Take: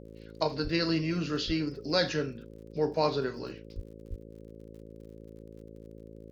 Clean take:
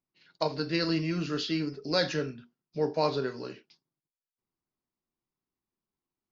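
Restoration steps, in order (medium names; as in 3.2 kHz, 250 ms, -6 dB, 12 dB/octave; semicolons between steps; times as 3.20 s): de-click; de-hum 54.8 Hz, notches 10; de-plosive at 0.63/1.46/3.75/4.09 s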